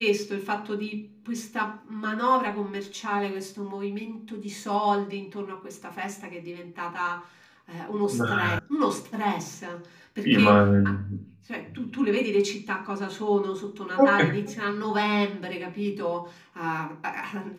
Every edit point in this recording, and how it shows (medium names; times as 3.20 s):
8.59 s: sound stops dead